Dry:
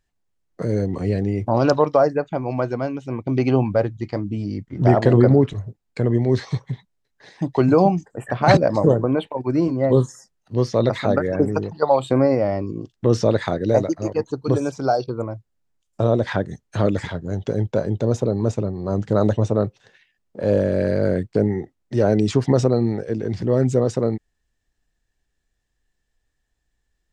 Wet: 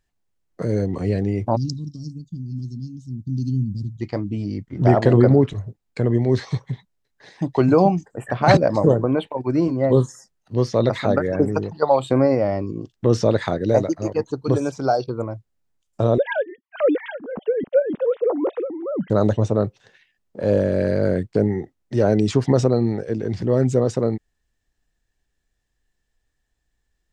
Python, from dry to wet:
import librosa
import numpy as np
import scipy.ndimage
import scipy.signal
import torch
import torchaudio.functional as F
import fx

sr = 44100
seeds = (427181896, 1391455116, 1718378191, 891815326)

y = fx.cheby2_bandstop(x, sr, low_hz=490.0, high_hz=2300.0, order=4, stop_db=50, at=(1.55, 3.96), fade=0.02)
y = fx.sine_speech(y, sr, at=(16.18, 19.1))